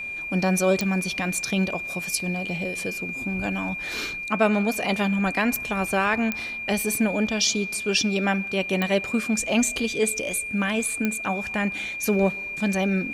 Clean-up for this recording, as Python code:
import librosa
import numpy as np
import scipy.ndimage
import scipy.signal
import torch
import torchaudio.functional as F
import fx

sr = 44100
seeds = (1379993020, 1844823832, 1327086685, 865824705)

y = fx.fix_declick_ar(x, sr, threshold=10.0)
y = fx.notch(y, sr, hz=2400.0, q=30.0)